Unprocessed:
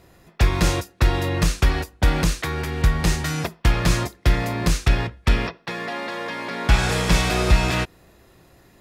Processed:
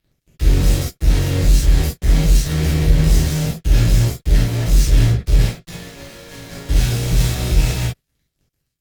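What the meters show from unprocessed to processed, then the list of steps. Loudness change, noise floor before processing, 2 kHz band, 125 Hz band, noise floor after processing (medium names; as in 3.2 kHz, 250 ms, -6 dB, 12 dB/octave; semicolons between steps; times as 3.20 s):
+5.0 dB, -55 dBFS, -5.5 dB, +6.5 dB, -74 dBFS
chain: dynamic bell 700 Hz, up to +5 dB, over -42 dBFS, Q 1.6; fuzz box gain 44 dB, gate -45 dBFS; amplifier tone stack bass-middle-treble 10-0-1; Chebyshev shaper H 7 -18 dB, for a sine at -16.5 dBFS; gated-style reverb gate 90 ms flat, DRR -7 dB; trim +4 dB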